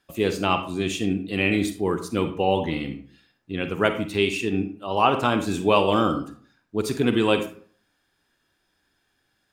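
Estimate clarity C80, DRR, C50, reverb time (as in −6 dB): 14.0 dB, 7.5 dB, 10.0 dB, 0.50 s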